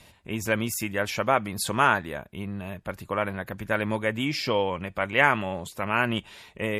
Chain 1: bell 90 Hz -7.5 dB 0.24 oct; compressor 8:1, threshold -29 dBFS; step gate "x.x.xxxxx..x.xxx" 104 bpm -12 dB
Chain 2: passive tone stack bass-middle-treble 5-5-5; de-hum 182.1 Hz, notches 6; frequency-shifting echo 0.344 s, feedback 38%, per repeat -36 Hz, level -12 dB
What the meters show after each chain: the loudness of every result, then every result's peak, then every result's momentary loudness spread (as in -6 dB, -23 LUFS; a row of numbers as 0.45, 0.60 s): -36.0, -38.5 LUFS; -16.5, -17.5 dBFS; 8, 15 LU